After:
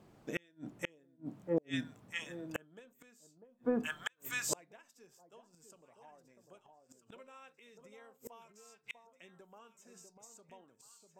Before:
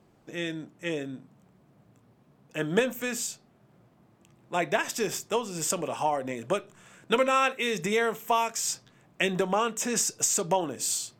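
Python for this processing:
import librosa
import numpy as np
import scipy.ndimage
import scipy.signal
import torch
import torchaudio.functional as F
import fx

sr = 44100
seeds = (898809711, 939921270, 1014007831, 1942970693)

y = fx.noise_reduce_blind(x, sr, reduce_db=7)
y = fx.echo_alternate(y, sr, ms=646, hz=990.0, feedback_pct=54, wet_db=-4.5)
y = fx.gate_flip(y, sr, shuts_db=-28.0, range_db=-39)
y = y * librosa.db_to_amplitude(7.0)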